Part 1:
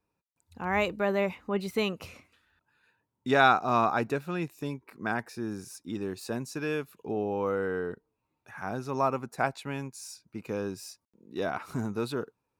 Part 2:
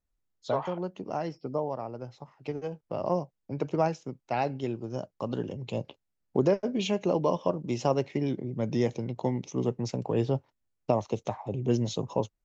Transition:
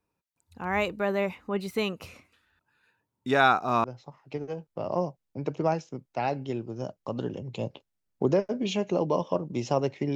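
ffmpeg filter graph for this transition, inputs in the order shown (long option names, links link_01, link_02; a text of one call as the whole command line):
ffmpeg -i cue0.wav -i cue1.wav -filter_complex "[0:a]apad=whole_dur=10.15,atrim=end=10.15,atrim=end=3.842[link_01];[1:a]atrim=start=1.978:end=8.29[link_02];[link_01][link_02]acrossfade=duration=0.004:curve1=hsin:curve2=hsin" out.wav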